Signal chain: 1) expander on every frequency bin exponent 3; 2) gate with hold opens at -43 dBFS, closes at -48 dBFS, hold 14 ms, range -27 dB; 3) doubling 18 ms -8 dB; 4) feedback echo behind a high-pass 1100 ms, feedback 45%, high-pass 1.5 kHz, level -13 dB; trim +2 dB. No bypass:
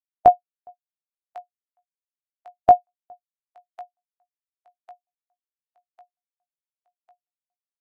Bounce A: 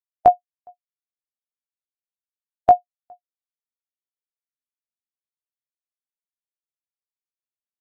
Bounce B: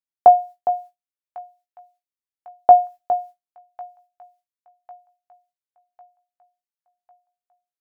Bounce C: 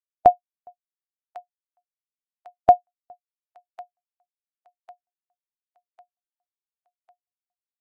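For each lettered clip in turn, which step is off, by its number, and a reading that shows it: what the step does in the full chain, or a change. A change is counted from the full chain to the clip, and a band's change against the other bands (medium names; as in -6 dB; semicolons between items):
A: 4, echo-to-direct -15.0 dB to none; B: 1, crest factor change -2.0 dB; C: 3, loudness change -1.5 LU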